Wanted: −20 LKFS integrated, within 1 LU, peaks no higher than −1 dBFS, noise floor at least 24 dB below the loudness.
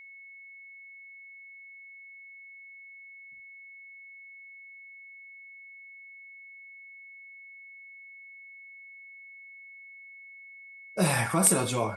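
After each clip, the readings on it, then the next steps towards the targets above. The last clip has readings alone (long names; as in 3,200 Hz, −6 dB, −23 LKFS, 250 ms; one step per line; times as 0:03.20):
interfering tone 2,200 Hz; level of the tone −46 dBFS; integrated loudness −24.5 LKFS; sample peak −7.5 dBFS; target loudness −20.0 LKFS
→ notch filter 2,200 Hz, Q 30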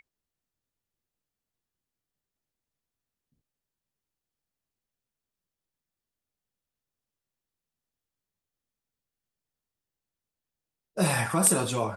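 interfering tone none found; integrated loudness −24.0 LKFS; sample peak −7.5 dBFS; target loudness −20.0 LKFS
→ level +4 dB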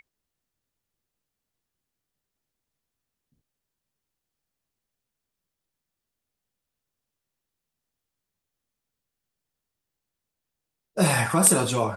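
integrated loudness −20.0 LKFS; sample peak −3.5 dBFS; background noise floor −86 dBFS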